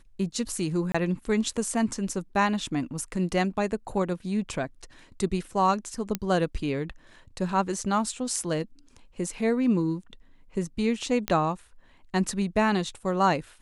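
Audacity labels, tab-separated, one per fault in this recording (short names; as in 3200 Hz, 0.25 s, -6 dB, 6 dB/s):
0.920000	0.940000	gap 25 ms
6.150000	6.150000	pop -12 dBFS
11.280000	11.280000	pop -11 dBFS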